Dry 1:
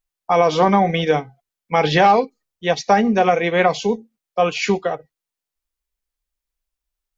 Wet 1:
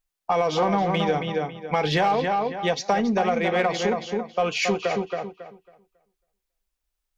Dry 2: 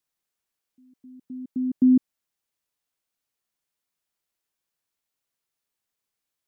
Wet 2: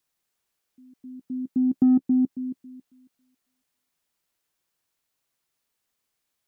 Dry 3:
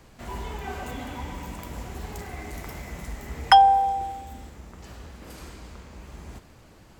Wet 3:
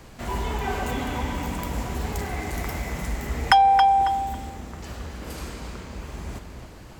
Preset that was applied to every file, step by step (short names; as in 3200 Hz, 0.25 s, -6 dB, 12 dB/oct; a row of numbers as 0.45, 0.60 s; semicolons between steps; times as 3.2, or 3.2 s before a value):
darkening echo 0.274 s, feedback 23%, low-pass 4400 Hz, level -7 dB; in parallel at -5 dB: soft clip -17.5 dBFS; on the sum: compressor 2.5:1, threshold -19 dBFS; match loudness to -24 LUFS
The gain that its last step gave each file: -3.0, +1.0, +2.5 dB